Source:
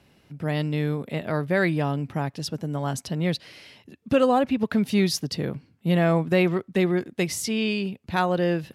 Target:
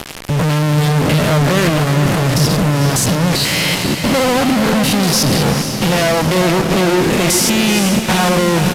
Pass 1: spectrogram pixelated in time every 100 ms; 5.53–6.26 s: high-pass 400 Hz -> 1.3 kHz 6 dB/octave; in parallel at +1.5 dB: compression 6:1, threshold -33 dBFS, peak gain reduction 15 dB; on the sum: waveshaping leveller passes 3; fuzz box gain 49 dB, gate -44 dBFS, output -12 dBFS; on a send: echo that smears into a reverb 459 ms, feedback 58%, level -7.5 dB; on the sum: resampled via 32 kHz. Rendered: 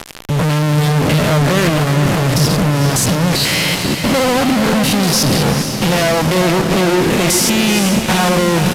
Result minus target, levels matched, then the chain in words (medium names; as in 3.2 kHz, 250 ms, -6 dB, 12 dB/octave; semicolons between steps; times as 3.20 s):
compression: peak gain reduction -8.5 dB
spectrogram pixelated in time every 100 ms; 5.53–6.26 s: high-pass 400 Hz -> 1.3 kHz 6 dB/octave; in parallel at +1.5 dB: compression 6:1, threshold -43.5 dBFS, peak gain reduction 24 dB; on the sum: waveshaping leveller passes 3; fuzz box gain 49 dB, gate -44 dBFS, output -12 dBFS; on a send: echo that smears into a reverb 459 ms, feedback 58%, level -7.5 dB; on the sum: resampled via 32 kHz